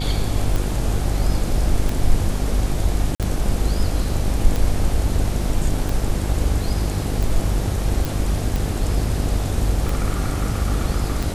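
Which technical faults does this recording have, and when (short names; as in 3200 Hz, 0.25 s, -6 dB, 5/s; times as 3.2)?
buzz 50 Hz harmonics 18 -24 dBFS
tick 45 rpm
3.15–3.2 gap 47 ms
8.05 pop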